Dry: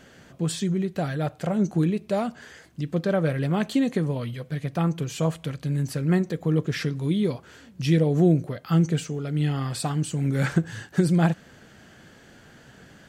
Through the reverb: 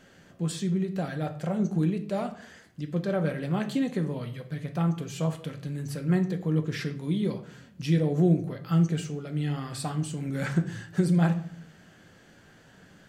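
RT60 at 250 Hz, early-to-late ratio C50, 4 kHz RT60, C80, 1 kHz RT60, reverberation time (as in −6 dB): 0.75 s, 12.5 dB, 0.35 s, 16.0 dB, 0.55 s, 0.55 s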